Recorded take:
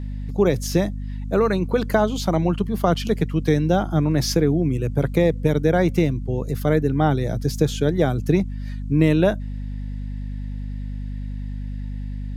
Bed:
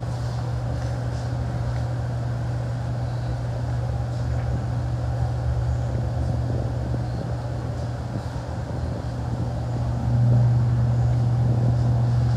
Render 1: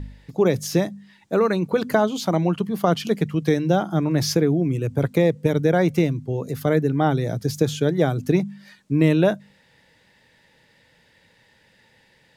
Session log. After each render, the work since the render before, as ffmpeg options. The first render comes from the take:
-af "bandreject=f=50:t=h:w=4,bandreject=f=100:t=h:w=4,bandreject=f=150:t=h:w=4,bandreject=f=200:t=h:w=4,bandreject=f=250:t=h:w=4"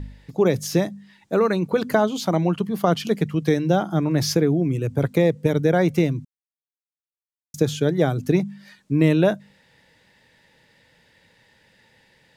-filter_complex "[0:a]asplit=3[a][b][c];[a]atrim=end=6.25,asetpts=PTS-STARTPTS,afade=t=out:st=6.246:d=0.004:c=hsin[d];[b]atrim=start=6.25:end=7.54,asetpts=PTS-STARTPTS,volume=0[e];[c]atrim=start=7.54,asetpts=PTS-STARTPTS,afade=t=in:d=0.004:c=hsin[f];[d][e][f]concat=n=3:v=0:a=1"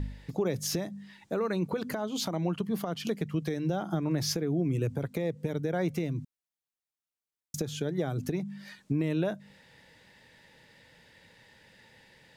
-af "acompressor=threshold=-24dB:ratio=3,alimiter=limit=-20dB:level=0:latency=1:release=285"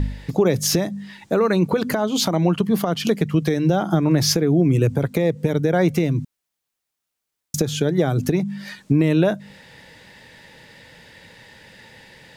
-af "volume=12dB"

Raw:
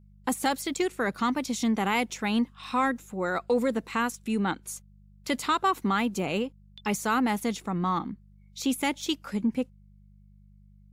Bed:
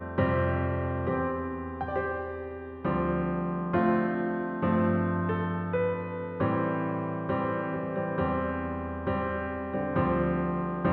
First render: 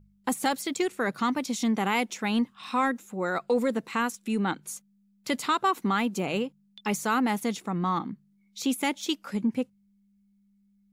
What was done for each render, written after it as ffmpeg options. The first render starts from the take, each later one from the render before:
-af "bandreject=f=50:t=h:w=4,bandreject=f=100:t=h:w=4,bandreject=f=150:t=h:w=4"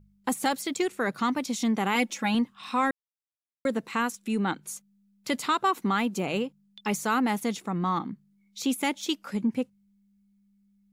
-filter_complex "[0:a]asettb=1/sr,asplit=3[a][b][c];[a]atrim=end=1.954[d];[b]atrim=start=1.95:end=2.35,asetpts=PTS-STARTPTS,afade=t=in:d=0.004:c=qsin,afade=t=out:st=0.396:d=0.004:c=qsin,aecho=1:1:3.6:0.65,atrim=end_sample=17640[e];[c]atrim=start=2.346[f];[d][e]acrossfade=d=0.004:c1=hsin:c2=qsin[g];[g][f]acrossfade=d=0.004:c1=qsin:c2=hsin,asplit=3[h][i][j];[h]atrim=end=2.91,asetpts=PTS-STARTPTS,afade=t=out:st=2.906:d=0.004:c=hsin[k];[i]atrim=start=2.91:end=3.65,asetpts=PTS-STARTPTS,volume=0[l];[j]atrim=start=3.65,asetpts=PTS-STARTPTS,afade=t=in:d=0.004:c=hsin[m];[k][l][m]concat=n=3:v=0:a=1"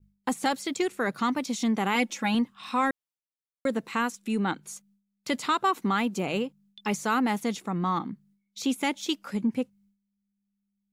-filter_complex "[0:a]agate=range=-33dB:threshold=-56dB:ratio=3:detection=peak,acrossover=split=8600[a][b];[b]acompressor=threshold=-48dB:ratio=4:attack=1:release=60[c];[a][c]amix=inputs=2:normalize=0"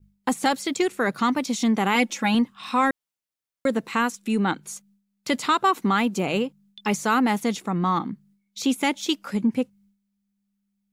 -af "volume=4.5dB"

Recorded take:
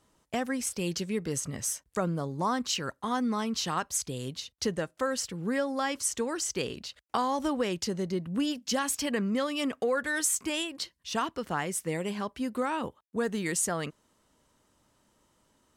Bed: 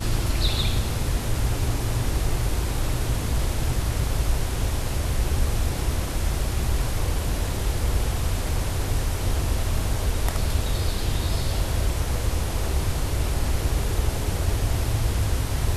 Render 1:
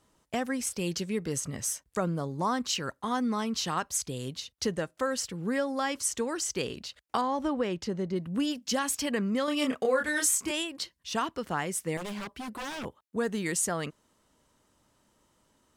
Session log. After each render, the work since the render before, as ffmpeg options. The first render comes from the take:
-filter_complex "[0:a]asettb=1/sr,asplit=3[a][b][c];[a]atrim=end=7.214[d];[b]atrim=start=7.21:end=8.16,asetpts=PTS-STARTPTS,afade=t=in:d=0.004:c=qsin,afade=t=out:st=0.946:d=0.004:c=qsin,lowpass=f=2.3k:p=1[e];[c]atrim=start=8.156[f];[d][e]acrossfade=d=0.004:c1=hsin:c2=qsin[g];[g][f]acrossfade=d=0.004:c1=qsin:c2=hsin,asettb=1/sr,asplit=3[h][i][j];[h]atrim=end=9.454[k];[i]atrim=start=9.45:end=10.51,asetpts=PTS-STARTPTS,afade=t=in:d=0.004:c=qsin,afade=t=out:st=1.056:d=0.004:c=qsin,asplit=2[l][m];[m]adelay=27,volume=-2.5dB[n];[l][n]amix=inputs=2:normalize=0,atrim=end_sample=46746[o];[j]atrim=start=10.506[p];[k][o]acrossfade=d=0.004:c1=hsin:c2=qsin[q];[q][p]acrossfade=d=0.004:c1=qsin:c2=hsin,asettb=1/sr,asplit=3[r][s][t];[r]atrim=end=11.974[u];[s]atrim=start=11.97:end=12.85,asetpts=PTS-STARTPTS,afade=t=in:d=0.004:c=qsin,afade=t=out:st=0.876:d=0.004:c=qsin,aeval=exprs='0.0251*(abs(mod(val(0)/0.0251+3,4)-2)-1)':c=same[v];[t]atrim=start=12.846[w];[u][v]acrossfade=d=0.004:c1=hsin:c2=qsin[x];[x][w]acrossfade=d=0.004:c1=qsin:c2=hsin"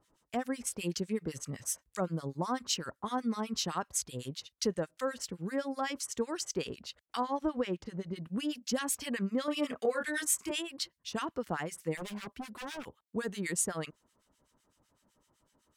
-filter_complex "[0:a]acrossover=split=1400[a][b];[a]aeval=exprs='val(0)*(1-1/2+1/2*cos(2*PI*7.9*n/s))':c=same[c];[b]aeval=exprs='val(0)*(1-1/2-1/2*cos(2*PI*7.9*n/s))':c=same[d];[c][d]amix=inputs=2:normalize=0"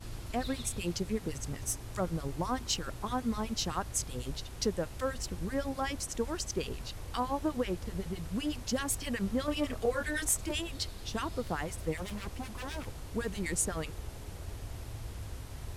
-filter_complex "[1:a]volume=-18.5dB[a];[0:a][a]amix=inputs=2:normalize=0"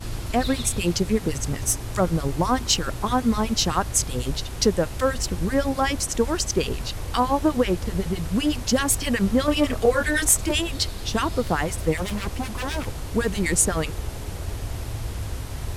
-af "volume=11.5dB"

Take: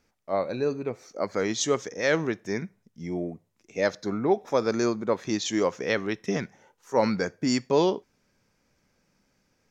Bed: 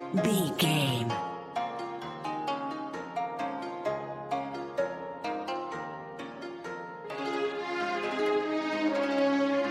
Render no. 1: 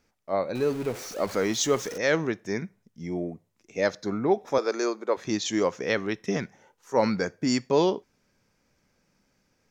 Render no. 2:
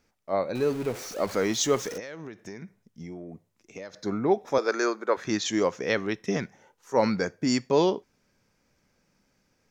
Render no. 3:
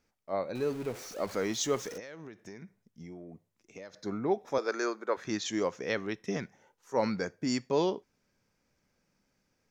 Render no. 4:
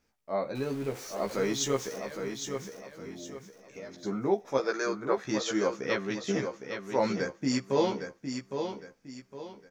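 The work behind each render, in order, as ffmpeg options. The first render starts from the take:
-filter_complex "[0:a]asettb=1/sr,asplit=3[a][b][c];[a]atrim=end=0.554[d];[b]atrim=start=0.55:end=1.98,asetpts=PTS-STARTPTS,afade=t=in:d=0.004:c=qsin,afade=t=out:st=1.426:d=0.004:c=qsin,aeval=exprs='val(0)+0.5*0.0178*sgn(val(0))':c=same[e];[c]atrim=start=1.976[f];[d][e]acrossfade=d=0.004:c1=hsin:c2=qsin[g];[g][f]acrossfade=d=0.004:c1=qsin:c2=hsin,asettb=1/sr,asplit=3[h][i][j];[h]atrim=end=4.584[k];[i]atrim=start=4.58:end=5.17,asetpts=PTS-STARTPTS,afade=t=in:d=0.004:c=qsin,afade=t=out:st=0.586:d=0.004:c=qsin,highpass=f=330:w=0.5412,highpass=f=330:w=1.3066[l];[j]atrim=start=5.166[m];[k][l]acrossfade=d=0.004:c1=hsin:c2=qsin[n];[n][m]acrossfade=d=0.004:c1=qsin:c2=hsin"
-filter_complex "[0:a]asettb=1/sr,asplit=3[a][b][c];[a]atrim=end=1.994[d];[b]atrim=start=1.99:end=3.98,asetpts=PTS-STARTPTS,afade=t=in:d=0.004:c=qsin,afade=t=out:st=1.986:d=0.004:c=qsin,acompressor=threshold=-35dB:ratio=16:attack=3.2:release=140:knee=1:detection=peak[e];[c]atrim=start=3.976[f];[d][e]acrossfade=d=0.004:c1=hsin:c2=qsin[g];[g][f]acrossfade=d=0.004:c1=qsin:c2=hsin,asettb=1/sr,asplit=3[h][i][j];[h]atrim=end=4.684[k];[i]atrim=start=4.68:end=5.51,asetpts=PTS-STARTPTS,afade=t=in:d=0.004:c=qsin,afade=t=out:st=0.826:d=0.004:c=qsin,equalizer=f=1.5k:w=2:g=8.5[l];[j]atrim=start=5.506[m];[k][l]acrossfade=d=0.004:c1=hsin:c2=qsin[n];[n][m]acrossfade=d=0.004:c1=qsin:c2=hsin"
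-af "volume=-6dB"
-filter_complex "[0:a]asplit=2[a][b];[b]adelay=15,volume=-3dB[c];[a][c]amix=inputs=2:normalize=0,aecho=1:1:810|1620|2430|3240:0.447|0.152|0.0516|0.0176"

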